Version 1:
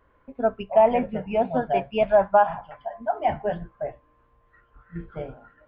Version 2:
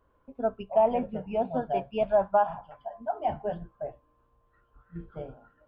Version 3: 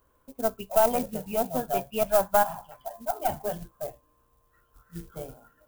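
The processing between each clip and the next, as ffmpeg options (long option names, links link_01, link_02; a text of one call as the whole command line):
ffmpeg -i in.wav -af "equalizer=frequency=2000:width=2.2:gain=-10.5,volume=-5dB" out.wav
ffmpeg -i in.wav -af "acrusher=bits=6:mode=log:mix=0:aa=0.000001,aemphasis=mode=production:type=75kf,aeval=exprs='0.376*(cos(1*acos(clip(val(0)/0.376,-1,1)))-cos(1*PI/2))+0.0376*(cos(4*acos(clip(val(0)/0.376,-1,1)))-cos(4*PI/2))':channel_layout=same" out.wav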